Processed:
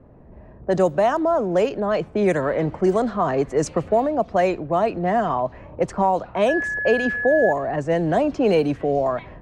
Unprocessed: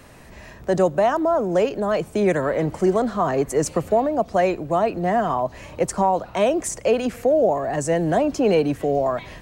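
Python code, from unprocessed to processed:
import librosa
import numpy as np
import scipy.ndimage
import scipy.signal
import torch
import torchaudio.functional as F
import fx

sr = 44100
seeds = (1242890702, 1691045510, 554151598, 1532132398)

y = fx.env_lowpass(x, sr, base_hz=550.0, full_db=-13.5)
y = fx.dmg_tone(y, sr, hz=1700.0, level_db=-23.0, at=(6.48, 7.51), fade=0.02)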